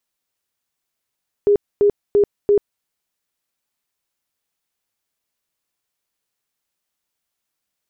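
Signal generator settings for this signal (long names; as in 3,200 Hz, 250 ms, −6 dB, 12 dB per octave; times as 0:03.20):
tone bursts 409 Hz, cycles 36, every 0.34 s, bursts 4, −10 dBFS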